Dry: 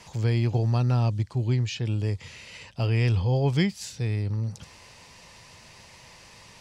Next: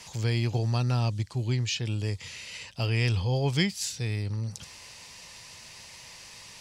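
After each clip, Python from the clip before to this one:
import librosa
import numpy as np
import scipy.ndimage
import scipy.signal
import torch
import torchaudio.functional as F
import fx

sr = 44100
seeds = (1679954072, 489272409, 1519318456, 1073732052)

y = fx.high_shelf(x, sr, hz=2100.0, db=10.5)
y = y * 10.0 ** (-3.5 / 20.0)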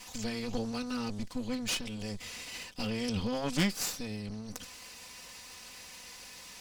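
y = fx.lower_of_two(x, sr, delay_ms=4.0)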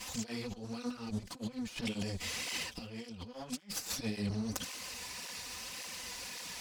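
y = fx.over_compress(x, sr, threshold_db=-39.0, ratio=-0.5)
y = fx.flanger_cancel(y, sr, hz=1.8, depth_ms=7.8)
y = y * 10.0 ** (3.5 / 20.0)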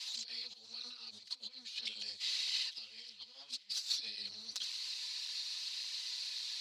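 y = fx.bandpass_q(x, sr, hz=4100.0, q=5.8)
y = fx.echo_feedback(y, sr, ms=500, feedback_pct=56, wet_db=-22)
y = y * 10.0 ** (11.0 / 20.0)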